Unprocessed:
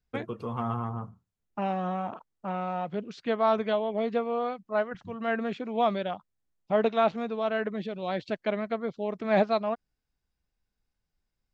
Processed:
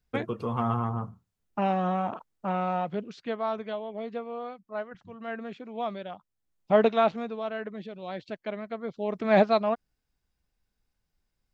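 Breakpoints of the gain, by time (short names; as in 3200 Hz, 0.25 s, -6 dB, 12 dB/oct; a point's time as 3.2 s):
2.75 s +3.5 dB
3.54 s -7 dB
6.08 s -7 dB
6.74 s +4.5 dB
7.55 s -5.5 dB
8.7 s -5.5 dB
9.17 s +3 dB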